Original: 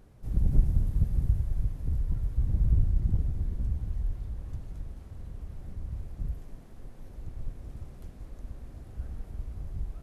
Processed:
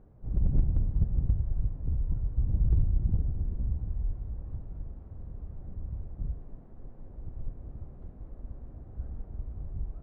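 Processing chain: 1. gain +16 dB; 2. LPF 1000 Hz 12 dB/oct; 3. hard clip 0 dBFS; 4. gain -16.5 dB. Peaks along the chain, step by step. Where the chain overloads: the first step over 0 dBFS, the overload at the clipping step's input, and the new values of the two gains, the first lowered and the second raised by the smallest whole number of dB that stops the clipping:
+5.5, +5.5, 0.0, -16.5 dBFS; step 1, 5.5 dB; step 1 +10 dB, step 4 -10.5 dB

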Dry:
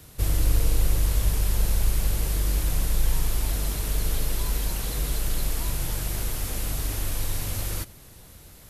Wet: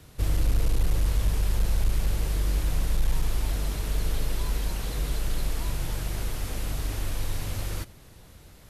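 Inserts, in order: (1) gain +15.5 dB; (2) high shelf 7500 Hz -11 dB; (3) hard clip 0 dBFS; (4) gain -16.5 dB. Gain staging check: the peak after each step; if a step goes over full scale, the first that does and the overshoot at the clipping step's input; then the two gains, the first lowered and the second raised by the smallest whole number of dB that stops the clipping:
+6.0, +5.5, 0.0, -16.5 dBFS; step 1, 5.5 dB; step 1 +9.5 dB, step 4 -10.5 dB

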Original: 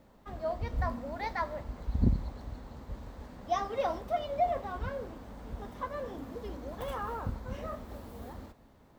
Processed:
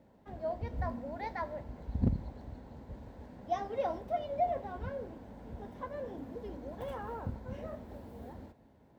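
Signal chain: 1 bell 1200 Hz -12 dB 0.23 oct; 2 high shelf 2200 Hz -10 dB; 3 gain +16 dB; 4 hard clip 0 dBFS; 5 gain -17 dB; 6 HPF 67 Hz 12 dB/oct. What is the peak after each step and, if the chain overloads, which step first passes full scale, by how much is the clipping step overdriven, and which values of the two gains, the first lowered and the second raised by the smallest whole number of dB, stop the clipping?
-12.5, -12.5, +3.5, 0.0, -17.0, -16.0 dBFS; step 3, 3.5 dB; step 3 +12 dB, step 5 -13 dB

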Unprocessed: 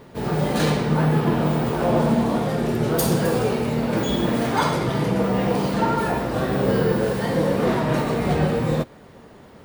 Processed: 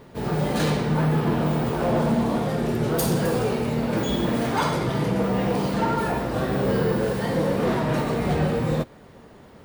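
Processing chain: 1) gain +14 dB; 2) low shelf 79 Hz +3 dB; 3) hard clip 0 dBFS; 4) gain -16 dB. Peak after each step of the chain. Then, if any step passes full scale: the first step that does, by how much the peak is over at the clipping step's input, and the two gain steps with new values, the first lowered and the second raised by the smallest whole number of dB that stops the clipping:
+7.5, +8.0, 0.0, -16.0 dBFS; step 1, 8.0 dB; step 1 +6 dB, step 4 -8 dB

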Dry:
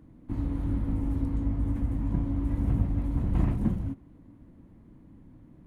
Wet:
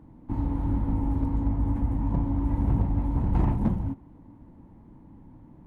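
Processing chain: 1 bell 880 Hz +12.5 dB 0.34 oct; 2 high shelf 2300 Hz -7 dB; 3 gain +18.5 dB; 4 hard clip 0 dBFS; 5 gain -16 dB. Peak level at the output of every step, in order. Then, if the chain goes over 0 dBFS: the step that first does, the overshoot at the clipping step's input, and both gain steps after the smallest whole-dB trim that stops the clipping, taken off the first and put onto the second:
-12.0, -12.0, +6.5, 0.0, -16.0 dBFS; step 3, 6.5 dB; step 3 +11.5 dB, step 5 -9 dB

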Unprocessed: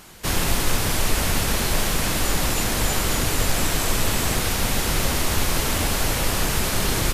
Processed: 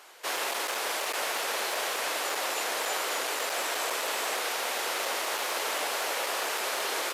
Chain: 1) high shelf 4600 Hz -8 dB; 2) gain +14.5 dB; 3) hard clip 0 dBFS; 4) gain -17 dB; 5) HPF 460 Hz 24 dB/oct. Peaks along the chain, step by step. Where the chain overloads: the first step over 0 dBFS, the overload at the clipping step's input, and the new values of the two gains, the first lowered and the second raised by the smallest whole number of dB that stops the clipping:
-8.0, +6.5, 0.0, -17.0, -16.5 dBFS; step 2, 6.5 dB; step 2 +7.5 dB, step 4 -10 dB

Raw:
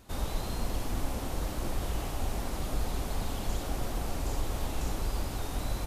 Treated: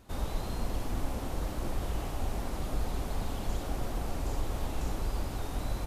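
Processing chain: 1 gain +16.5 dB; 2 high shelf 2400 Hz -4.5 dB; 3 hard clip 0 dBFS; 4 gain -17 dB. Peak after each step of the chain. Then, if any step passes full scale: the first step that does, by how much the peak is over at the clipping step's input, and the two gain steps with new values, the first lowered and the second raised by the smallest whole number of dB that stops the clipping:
-2.0, -2.0, -2.0, -19.0 dBFS; no overload

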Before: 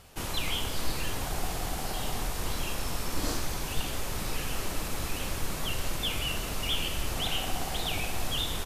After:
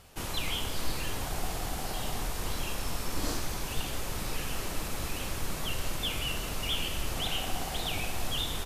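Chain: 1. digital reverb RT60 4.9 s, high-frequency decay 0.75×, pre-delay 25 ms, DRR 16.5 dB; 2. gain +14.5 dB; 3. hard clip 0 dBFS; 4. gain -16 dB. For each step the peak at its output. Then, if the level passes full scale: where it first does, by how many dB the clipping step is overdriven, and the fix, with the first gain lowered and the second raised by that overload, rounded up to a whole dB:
-16.5, -2.0, -2.0, -18.0 dBFS; no overload

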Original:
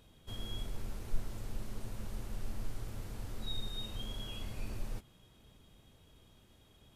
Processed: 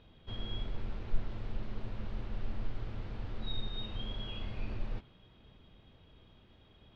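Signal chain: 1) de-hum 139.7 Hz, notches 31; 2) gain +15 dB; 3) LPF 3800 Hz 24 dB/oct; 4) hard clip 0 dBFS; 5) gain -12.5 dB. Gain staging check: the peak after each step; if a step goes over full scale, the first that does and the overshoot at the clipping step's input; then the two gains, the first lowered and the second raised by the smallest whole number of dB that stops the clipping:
-20.0, -5.0, -5.0, -5.0, -17.5 dBFS; no overload

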